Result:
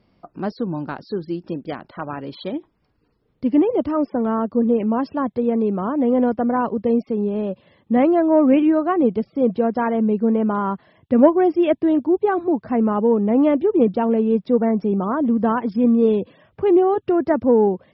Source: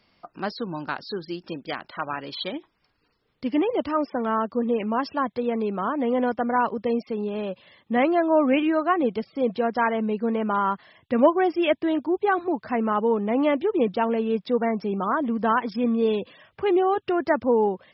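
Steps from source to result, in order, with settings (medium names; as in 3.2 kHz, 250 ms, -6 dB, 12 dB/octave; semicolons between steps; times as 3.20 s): wow and flutter 24 cents; tilt shelf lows +8.5 dB, about 850 Hz; Chebyshev shaper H 3 -28 dB, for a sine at -3 dBFS; trim +1.5 dB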